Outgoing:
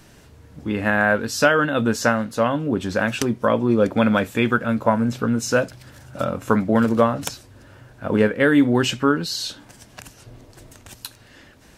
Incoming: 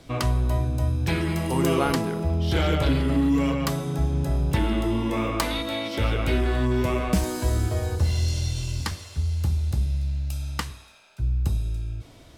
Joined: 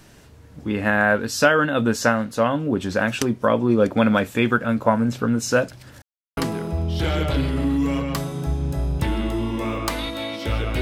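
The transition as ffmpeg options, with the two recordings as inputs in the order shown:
-filter_complex "[0:a]apad=whole_dur=10.81,atrim=end=10.81,asplit=2[a][b];[a]atrim=end=6.02,asetpts=PTS-STARTPTS,afade=t=out:st=6.016:d=0.004:c=hsin[c];[b]atrim=start=6.02:end=6.37,asetpts=PTS-STARTPTS,volume=0[d];[1:a]atrim=start=1.89:end=6.33,asetpts=PTS-STARTPTS,afade=t=in:d=0.004:c=hsin[e];[c][d][e]concat=n=3:v=0:a=1"

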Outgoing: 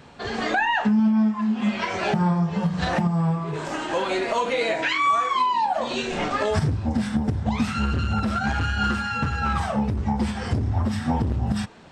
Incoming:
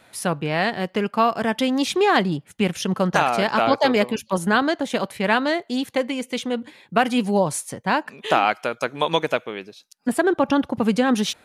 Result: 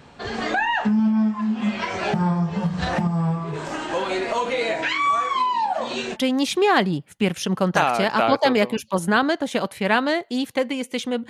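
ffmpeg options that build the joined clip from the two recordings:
-filter_complex "[0:a]asettb=1/sr,asplit=3[a][b][c];[a]atrim=end=5.384[d];[b]atrim=start=5.38:end=6.17,asetpts=PTS-STARTPTS,afade=t=in:d=0.004:c=qsin,afade=t=out:st=0.786:d=0.004:c=qsin,highpass=f=150:p=1[e];[c]atrim=start=6.166[f];[d][e]acrossfade=d=0.004:c1=hsin:c2=qsin[g];[g][f]acrossfade=d=0.004:c1=qsin:c2=hsin,apad=whole_dur=11.29,atrim=end=11.29,atrim=end=6.17,asetpts=PTS-STARTPTS[h];[1:a]atrim=start=1.5:end=6.68,asetpts=PTS-STARTPTS[i];[h][i]acrossfade=d=0.06:c1=tri:c2=tri"

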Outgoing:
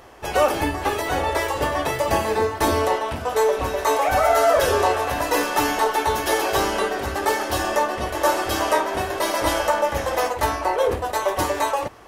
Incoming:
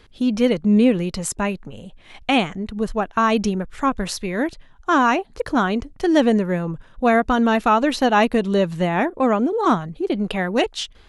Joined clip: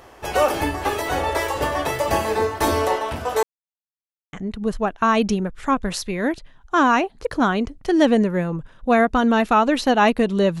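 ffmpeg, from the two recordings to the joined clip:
-filter_complex "[0:a]apad=whole_dur=10.6,atrim=end=10.6,asplit=2[a][b];[a]atrim=end=3.43,asetpts=PTS-STARTPTS,afade=t=out:st=3.426:d=0.004:c=hsin[c];[b]atrim=start=3.43:end=4.33,asetpts=PTS-STARTPTS,volume=0[d];[1:a]atrim=start=2.48:end=8.75,asetpts=PTS-STARTPTS,afade=t=in:d=0.004:c=hsin[e];[c][d][e]concat=n=3:v=0:a=1"

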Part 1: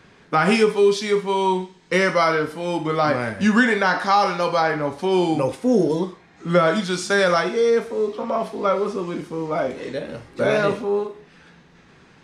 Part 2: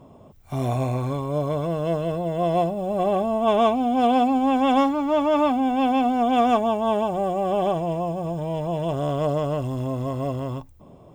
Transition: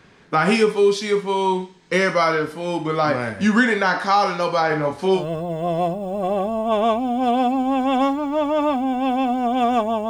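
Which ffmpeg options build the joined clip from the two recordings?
-filter_complex "[0:a]asettb=1/sr,asplit=3[a][b][c];[a]atrim=end=4.684[d];[b]atrim=start=4.68:end=5.25,asetpts=PTS-STARTPTS,afade=t=in:d=0.004:c=qsin,afade=t=out:st=0.566:d=0.004:c=qsin,asplit=2[e][f];[f]adelay=26,volume=-3.5dB[g];[e][g]amix=inputs=2:normalize=0,atrim=end_sample=25137[h];[c]atrim=start=5.246[i];[d][h]acrossfade=d=0.004:c1=hsin:c2=qsin[j];[j][i]acrossfade=d=0.004:c1=qsin:c2=hsin,apad=whole_dur=10.09,atrim=end=10.09,atrim=end=5.25,asetpts=PTS-STARTPTS[k];[1:a]atrim=start=1.89:end=6.85,asetpts=PTS-STARTPTS[l];[k][l]acrossfade=d=0.12:c1=tri:c2=tri"

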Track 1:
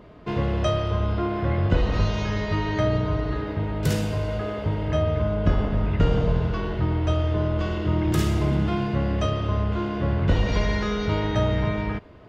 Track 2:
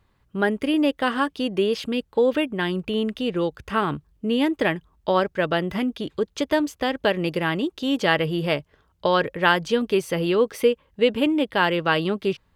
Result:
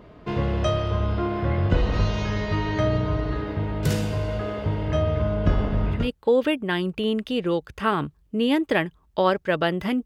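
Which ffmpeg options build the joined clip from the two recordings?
-filter_complex "[0:a]apad=whole_dur=10.05,atrim=end=10.05,atrim=end=6.11,asetpts=PTS-STARTPTS[a];[1:a]atrim=start=1.81:end=5.95,asetpts=PTS-STARTPTS[b];[a][b]acrossfade=d=0.2:c1=tri:c2=tri"

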